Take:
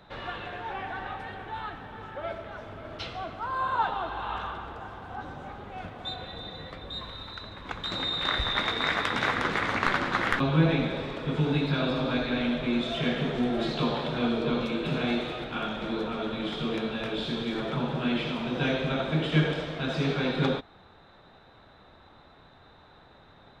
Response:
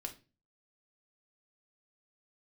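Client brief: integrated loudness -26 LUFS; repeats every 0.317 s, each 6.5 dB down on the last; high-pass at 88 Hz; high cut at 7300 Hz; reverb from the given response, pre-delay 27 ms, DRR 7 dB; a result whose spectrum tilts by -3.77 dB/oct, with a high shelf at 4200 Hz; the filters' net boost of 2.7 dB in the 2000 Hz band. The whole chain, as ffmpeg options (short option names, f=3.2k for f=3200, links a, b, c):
-filter_complex "[0:a]highpass=88,lowpass=7.3k,equalizer=f=2k:t=o:g=5,highshelf=f=4.2k:g=-7.5,aecho=1:1:317|634|951|1268|1585|1902:0.473|0.222|0.105|0.0491|0.0231|0.0109,asplit=2[a][b];[1:a]atrim=start_sample=2205,adelay=27[c];[b][c]afir=irnorm=-1:irlink=0,volume=-5dB[d];[a][d]amix=inputs=2:normalize=0,volume=1.5dB"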